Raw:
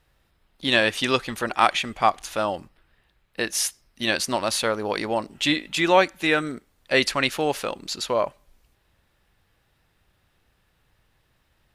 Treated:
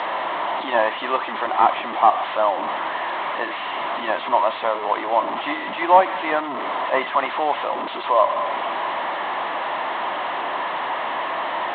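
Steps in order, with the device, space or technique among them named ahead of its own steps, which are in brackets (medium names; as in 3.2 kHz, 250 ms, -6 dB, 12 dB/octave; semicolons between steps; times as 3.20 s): digital answering machine (band-pass 360–3100 Hz; one-bit delta coder 16 kbps, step -22.5 dBFS; cabinet simulation 350–4200 Hz, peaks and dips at 460 Hz -8 dB, 670 Hz +6 dB, 1 kHz +10 dB, 1.5 kHz -7 dB, 2.5 kHz -9 dB, 4 kHz +6 dB); trim +3 dB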